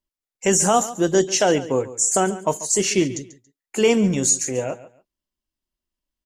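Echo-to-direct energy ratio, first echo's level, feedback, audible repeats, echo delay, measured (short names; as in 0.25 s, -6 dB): -16.0 dB, -16.0 dB, 22%, 2, 0.14 s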